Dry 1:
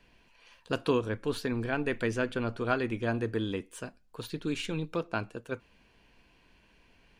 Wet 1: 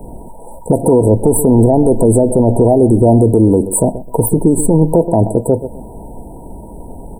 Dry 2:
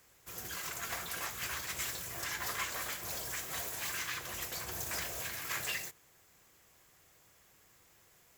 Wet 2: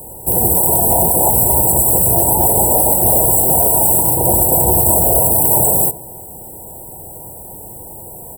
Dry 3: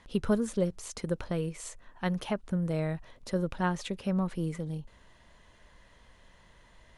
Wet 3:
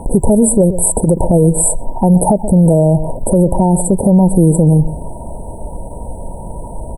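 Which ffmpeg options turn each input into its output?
-filter_complex "[0:a]afftfilt=real='re*(1-between(b*sr/4096,970,7700))':imag='im*(1-between(b*sr/4096,970,7700))':win_size=4096:overlap=0.75,adynamicequalizer=threshold=0.00282:dfrequency=640:dqfactor=5.9:tfrequency=640:tqfactor=5.9:attack=5:release=100:ratio=0.375:range=2:mode=boostabove:tftype=bell,acrossover=split=690|3200[a][b][c];[a]acompressor=threshold=-37dB:ratio=4[d];[b]acompressor=threshold=-50dB:ratio=4[e];[d][e][c]amix=inputs=3:normalize=0,asplit=2[f][g];[g]adelay=128,lowpass=f=1.1k:p=1,volume=-17.5dB,asplit=2[h][i];[i]adelay=128,lowpass=f=1.1k:p=1,volume=0.24[j];[f][h][j]amix=inputs=3:normalize=0,alimiter=level_in=35dB:limit=-1dB:release=50:level=0:latency=1,volume=-1dB"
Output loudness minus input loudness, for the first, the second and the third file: +21.0, +27.0, +21.0 LU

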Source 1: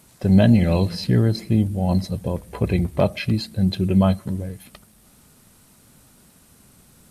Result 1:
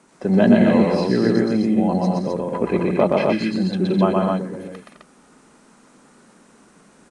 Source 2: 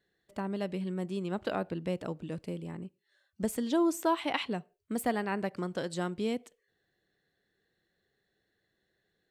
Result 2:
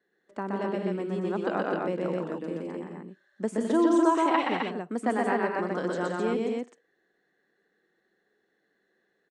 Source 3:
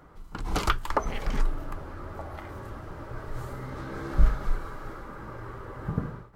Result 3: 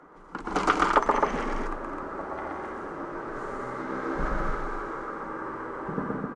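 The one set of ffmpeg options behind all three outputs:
-filter_complex "[0:a]acrossover=split=200 2000:gain=0.112 1 0.178[a][b][c];[a][b][c]amix=inputs=3:normalize=0,aresample=22050,aresample=44100,equalizer=f=100:t=o:w=0.67:g=-12,equalizer=f=630:t=o:w=0.67:g=-4,equalizer=f=6.3k:t=o:w=0.67:g=6,asplit=2[d][e];[e]aecho=0:1:122.4|172|209.9|259.5:0.794|0.316|0.398|0.708[f];[d][f]amix=inputs=2:normalize=0,volume=5.5dB"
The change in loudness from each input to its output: +2.0, +5.5, +3.5 LU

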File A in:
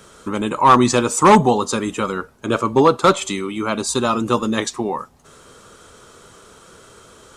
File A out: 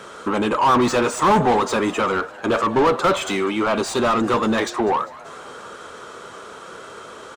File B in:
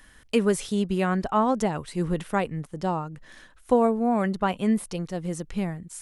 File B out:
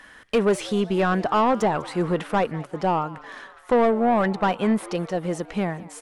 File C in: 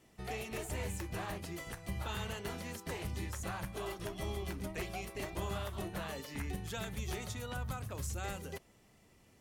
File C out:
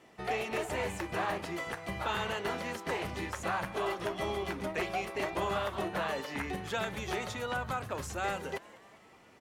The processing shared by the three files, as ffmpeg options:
-filter_complex "[0:a]asplit=2[a][b];[b]highpass=f=720:p=1,volume=25dB,asoftclip=type=tanh:threshold=-3.5dB[c];[a][c]amix=inputs=2:normalize=0,lowpass=f=1.4k:p=1,volume=-6dB,asplit=6[d][e][f][g][h][i];[e]adelay=199,afreqshift=130,volume=-20.5dB[j];[f]adelay=398,afreqshift=260,volume=-24.8dB[k];[g]adelay=597,afreqshift=390,volume=-29.1dB[l];[h]adelay=796,afreqshift=520,volume=-33.4dB[m];[i]adelay=995,afreqshift=650,volume=-37.7dB[n];[d][j][k][l][m][n]amix=inputs=6:normalize=0,volume=-5.5dB"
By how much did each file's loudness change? -2.0, +3.0, +6.0 LU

